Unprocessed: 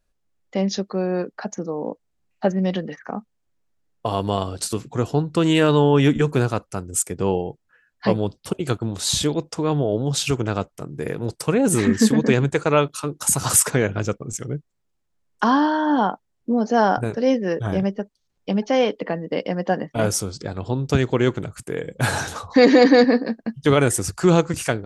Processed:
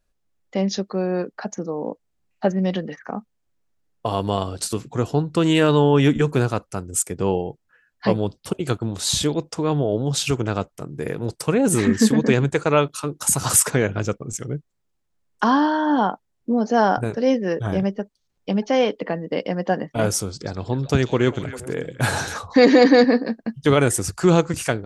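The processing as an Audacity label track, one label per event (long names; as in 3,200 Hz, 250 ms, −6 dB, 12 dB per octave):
20.330000	22.380000	echo through a band-pass that steps 133 ms, band-pass from 4,700 Hz, each repeat −1.4 octaves, level −6 dB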